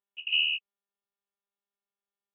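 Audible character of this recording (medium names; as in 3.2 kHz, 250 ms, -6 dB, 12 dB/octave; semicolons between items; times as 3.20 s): a quantiser's noise floor 10-bit, dither none; tremolo saw down 3.1 Hz, depth 75%; AMR-NB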